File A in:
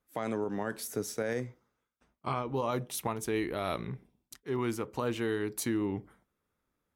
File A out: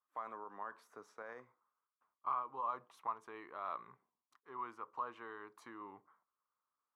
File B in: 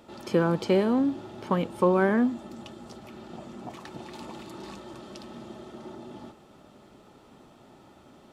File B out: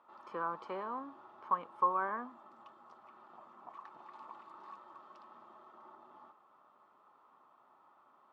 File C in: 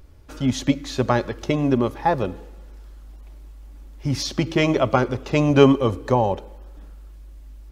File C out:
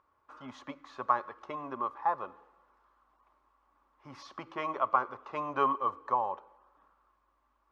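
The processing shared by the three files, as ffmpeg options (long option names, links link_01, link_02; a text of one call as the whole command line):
ffmpeg -i in.wav -af "bandpass=frequency=1100:width_type=q:width=5.9:csg=0,volume=2dB" out.wav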